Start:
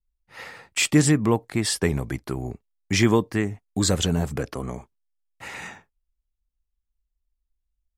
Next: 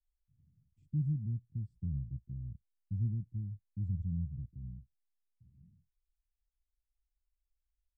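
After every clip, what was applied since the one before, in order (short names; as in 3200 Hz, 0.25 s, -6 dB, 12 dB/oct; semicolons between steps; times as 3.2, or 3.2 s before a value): inverse Chebyshev low-pass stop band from 520 Hz, stop band 60 dB; gain -7.5 dB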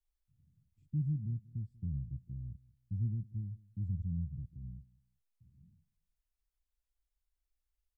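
feedback echo 0.188 s, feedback 25%, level -22 dB; gain -1 dB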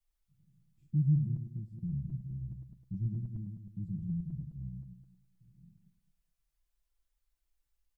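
regenerating reverse delay 0.105 s, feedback 46%, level -6 dB; comb 5.9 ms, depth 87%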